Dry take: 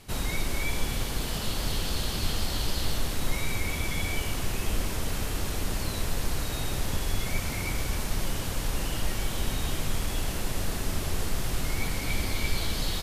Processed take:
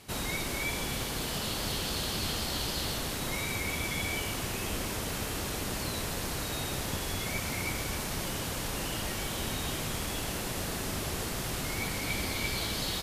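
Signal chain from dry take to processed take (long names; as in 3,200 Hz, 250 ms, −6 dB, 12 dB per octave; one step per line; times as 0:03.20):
high-pass filter 130 Hz 6 dB per octave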